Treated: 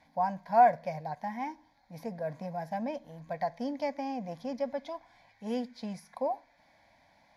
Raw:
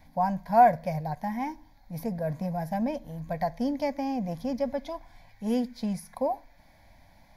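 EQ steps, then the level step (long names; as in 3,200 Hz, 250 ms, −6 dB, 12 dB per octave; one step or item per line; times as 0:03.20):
high-pass filter 410 Hz 6 dB per octave
high-frequency loss of the air 61 metres
−1.5 dB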